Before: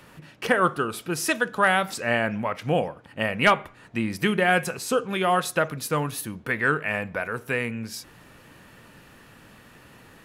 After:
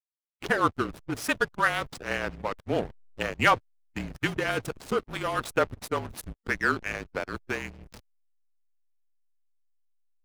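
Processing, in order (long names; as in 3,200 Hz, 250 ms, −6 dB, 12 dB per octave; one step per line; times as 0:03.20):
frequency shifter −37 Hz
slack as between gear wheels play −23 dBFS
harmonic and percussive parts rebalanced harmonic −11 dB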